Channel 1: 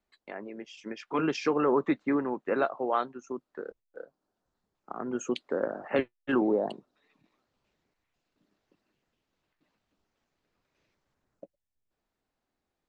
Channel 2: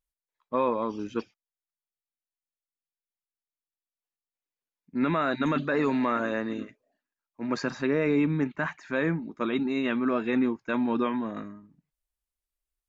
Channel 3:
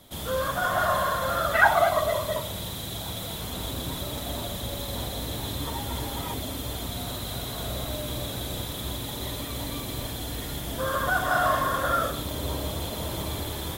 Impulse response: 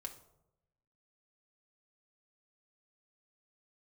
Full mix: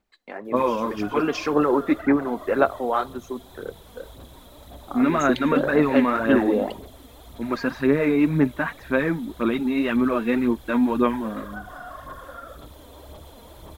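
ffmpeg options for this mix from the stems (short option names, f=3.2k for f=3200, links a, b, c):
-filter_complex "[0:a]volume=2dB,asplit=2[a][b];[b]volume=-7.5dB[c];[1:a]lowpass=3.8k,volume=3dB[d];[2:a]asubboost=boost=3:cutoff=58,acrossover=split=320|1700[e][f][g];[e]acompressor=threshold=-35dB:ratio=4[h];[f]acompressor=threshold=-27dB:ratio=4[i];[g]acompressor=threshold=-42dB:ratio=4[j];[h][i][j]amix=inputs=3:normalize=0,adelay=450,volume=-12dB[k];[3:a]atrim=start_sample=2205[l];[c][l]afir=irnorm=-1:irlink=0[m];[a][d][k][m]amix=inputs=4:normalize=0,aphaser=in_gain=1:out_gain=1:delay=4.3:decay=0.47:speed=1.9:type=sinusoidal"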